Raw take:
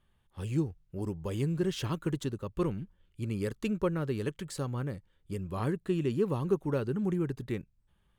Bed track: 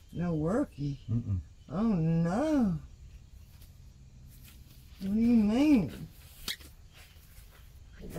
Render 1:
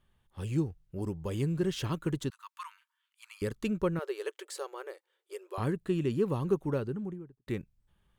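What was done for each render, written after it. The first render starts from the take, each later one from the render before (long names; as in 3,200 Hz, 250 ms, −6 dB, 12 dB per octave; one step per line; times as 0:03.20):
0:02.30–0:03.42: linear-phase brick-wall high-pass 900 Hz
0:03.99–0:05.58: linear-phase brick-wall high-pass 340 Hz
0:06.60–0:07.47: fade out and dull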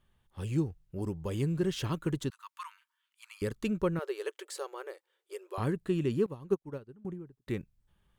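0:06.26–0:07.05: expander for the loud parts 2.5 to 1, over −49 dBFS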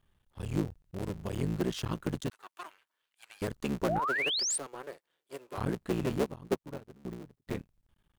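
sub-harmonics by changed cycles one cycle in 3, muted
0:03.88–0:04.58: sound drawn into the spectrogram rise 570–9,400 Hz −31 dBFS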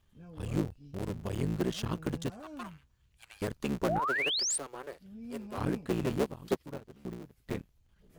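mix in bed track −18.5 dB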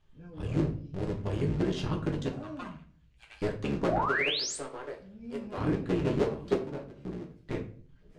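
high-frequency loss of the air 85 metres
rectangular room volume 39 cubic metres, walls mixed, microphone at 0.5 metres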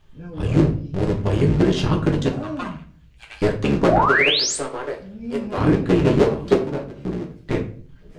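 level +12 dB
brickwall limiter −3 dBFS, peak gain reduction 1 dB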